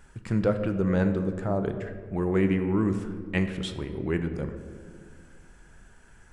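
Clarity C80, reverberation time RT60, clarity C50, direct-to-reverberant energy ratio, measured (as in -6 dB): 10.5 dB, 1.9 s, 9.0 dB, 7.0 dB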